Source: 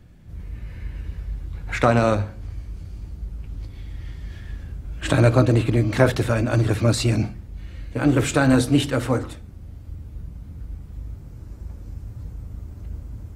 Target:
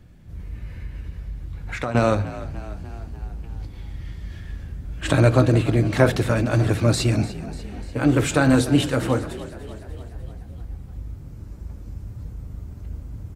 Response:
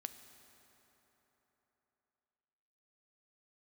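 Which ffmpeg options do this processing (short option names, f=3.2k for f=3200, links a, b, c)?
-filter_complex "[0:a]asettb=1/sr,asplit=3[a][b][c];[a]atrim=end=0.724[d];[b]atrim=start=0.72:end=1.95,asetpts=PTS-STARTPTS,afade=t=in:d=0.004:c=qsin,afade=t=out:st=1.226:d=0.004:c=qsin,acompressor=threshold=-29dB:ratio=2.5[e];[c]atrim=start=1.946[f];[d][e]acrossfade=d=0.004:c1=hsin:c2=qsin[g];[g][f]acrossfade=d=0.004:c1=qsin:c2=hsin,asplit=2[h][i];[i]asplit=6[j][k][l][m][n][o];[j]adelay=296,afreqshift=44,volume=-16dB[p];[k]adelay=592,afreqshift=88,volume=-20.7dB[q];[l]adelay=888,afreqshift=132,volume=-25.5dB[r];[m]adelay=1184,afreqshift=176,volume=-30.2dB[s];[n]adelay=1480,afreqshift=220,volume=-34.9dB[t];[o]adelay=1776,afreqshift=264,volume=-39.7dB[u];[p][q][r][s][t][u]amix=inputs=6:normalize=0[v];[h][v]amix=inputs=2:normalize=0"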